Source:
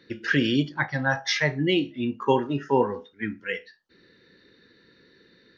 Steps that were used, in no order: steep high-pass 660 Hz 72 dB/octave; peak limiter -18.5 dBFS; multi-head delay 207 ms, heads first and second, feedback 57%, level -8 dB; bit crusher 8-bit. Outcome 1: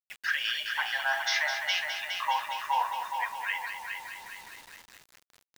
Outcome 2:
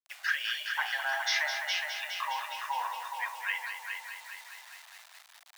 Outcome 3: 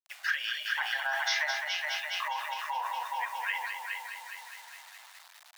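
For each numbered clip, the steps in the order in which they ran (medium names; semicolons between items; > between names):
steep high-pass > peak limiter > multi-head delay > bit crusher; peak limiter > multi-head delay > bit crusher > steep high-pass; multi-head delay > bit crusher > peak limiter > steep high-pass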